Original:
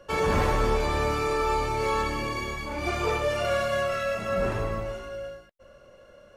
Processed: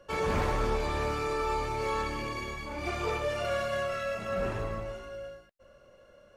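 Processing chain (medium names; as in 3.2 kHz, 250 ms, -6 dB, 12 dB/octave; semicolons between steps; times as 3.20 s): loudspeaker Doppler distortion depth 0.14 ms; trim -5 dB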